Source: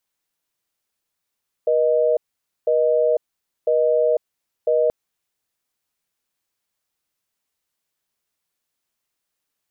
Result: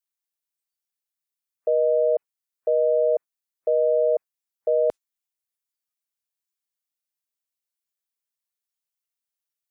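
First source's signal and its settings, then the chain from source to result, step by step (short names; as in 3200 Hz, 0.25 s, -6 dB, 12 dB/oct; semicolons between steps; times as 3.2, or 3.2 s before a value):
call progress tone busy tone, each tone -17.5 dBFS 3.23 s
spectral noise reduction 17 dB; tilt +2.5 dB/oct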